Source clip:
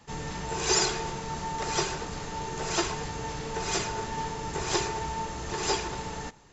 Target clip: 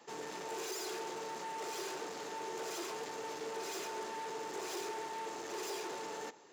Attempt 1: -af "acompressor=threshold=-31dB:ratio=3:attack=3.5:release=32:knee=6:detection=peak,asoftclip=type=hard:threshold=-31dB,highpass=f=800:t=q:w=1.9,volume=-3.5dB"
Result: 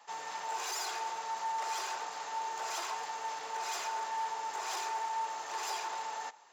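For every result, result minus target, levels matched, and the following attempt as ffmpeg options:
500 Hz band -10.5 dB; hard clip: distortion -6 dB
-af "acompressor=threshold=-31dB:ratio=3:attack=3.5:release=32:knee=6:detection=peak,asoftclip=type=hard:threshold=-31dB,highpass=f=380:t=q:w=1.9,volume=-3.5dB"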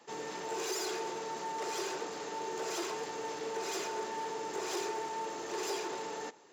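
hard clip: distortion -6 dB
-af "acompressor=threshold=-31dB:ratio=3:attack=3.5:release=32:knee=6:detection=peak,asoftclip=type=hard:threshold=-37.5dB,highpass=f=380:t=q:w=1.9,volume=-3.5dB"

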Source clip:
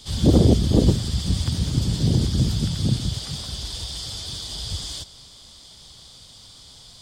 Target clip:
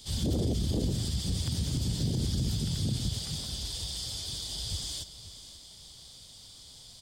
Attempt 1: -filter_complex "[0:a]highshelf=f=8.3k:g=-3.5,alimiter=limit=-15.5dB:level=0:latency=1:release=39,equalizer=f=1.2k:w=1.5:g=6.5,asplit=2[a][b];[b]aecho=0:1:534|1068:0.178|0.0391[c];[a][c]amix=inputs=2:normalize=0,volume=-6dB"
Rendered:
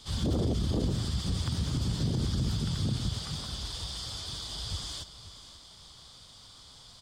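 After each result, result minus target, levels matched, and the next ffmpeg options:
1000 Hz band +6.5 dB; 8000 Hz band -4.5 dB
-filter_complex "[0:a]highshelf=f=8.3k:g=-3.5,alimiter=limit=-15.5dB:level=0:latency=1:release=39,equalizer=f=1.2k:w=1.5:g=-4.5,asplit=2[a][b];[b]aecho=0:1:534|1068:0.178|0.0391[c];[a][c]amix=inputs=2:normalize=0,volume=-6dB"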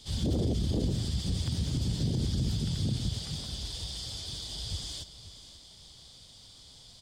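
8000 Hz band -4.5 dB
-filter_complex "[0:a]highshelf=f=8.3k:g=8,alimiter=limit=-15.5dB:level=0:latency=1:release=39,equalizer=f=1.2k:w=1.5:g=-4.5,asplit=2[a][b];[b]aecho=0:1:534|1068:0.178|0.0391[c];[a][c]amix=inputs=2:normalize=0,volume=-6dB"

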